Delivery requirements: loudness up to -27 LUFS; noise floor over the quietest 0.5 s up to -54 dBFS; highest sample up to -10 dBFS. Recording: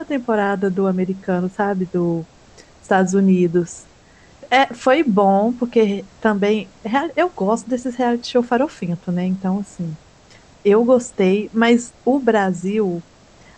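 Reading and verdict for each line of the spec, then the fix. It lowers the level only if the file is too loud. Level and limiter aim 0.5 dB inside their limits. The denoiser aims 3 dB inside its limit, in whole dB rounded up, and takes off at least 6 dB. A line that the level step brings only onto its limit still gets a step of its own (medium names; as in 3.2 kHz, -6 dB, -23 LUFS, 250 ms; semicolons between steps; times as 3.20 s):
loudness -18.5 LUFS: fail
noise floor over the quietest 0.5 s -48 dBFS: fail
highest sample -3.5 dBFS: fail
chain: trim -9 dB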